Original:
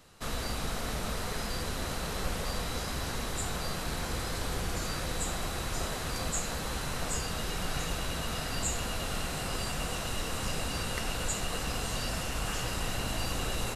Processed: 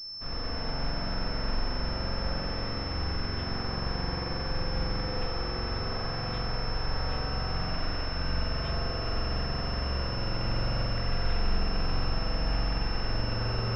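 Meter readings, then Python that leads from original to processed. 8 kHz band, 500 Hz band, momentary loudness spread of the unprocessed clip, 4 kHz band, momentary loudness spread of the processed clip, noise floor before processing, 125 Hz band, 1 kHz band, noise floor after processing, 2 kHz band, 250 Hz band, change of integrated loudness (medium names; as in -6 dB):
under -25 dB, +1.5 dB, 2 LU, +2.0 dB, 2 LU, -36 dBFS, +5.0 dB, +1.0 dB, -34 dBFS, -1.0 dB, +2.0 dB, +2.0 dB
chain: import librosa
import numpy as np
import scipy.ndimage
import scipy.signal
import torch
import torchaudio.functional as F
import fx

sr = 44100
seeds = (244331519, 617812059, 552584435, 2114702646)

y = fx.low_shelf(x, sr, hz=99.0, db=7.5)
y = fx.rev_spring(y, sr, rt60_s=3.7, pass_ms=(44,), chirp_ms=65, drr_db=-7.0)
y = fx.pwm(y, sr, carrier_hz=5300.0)
y = y * 10.0 ** (-7.0 / 20.0)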